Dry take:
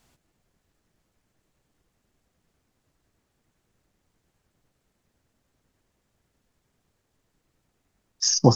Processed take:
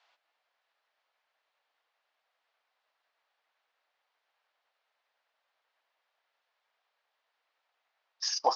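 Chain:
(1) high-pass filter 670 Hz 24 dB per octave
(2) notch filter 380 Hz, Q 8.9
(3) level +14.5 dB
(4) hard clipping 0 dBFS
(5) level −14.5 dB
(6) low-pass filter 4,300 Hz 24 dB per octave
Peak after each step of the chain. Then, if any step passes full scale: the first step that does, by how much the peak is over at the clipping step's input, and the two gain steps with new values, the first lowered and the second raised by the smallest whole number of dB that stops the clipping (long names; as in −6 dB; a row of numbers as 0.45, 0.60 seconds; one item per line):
−10.0, −10.0, +4.5, 0.0, −14.5, −14.0 dBFS
step 3, 4.5 dB
step 3 +9.5 dB, step 5 −9.5 dB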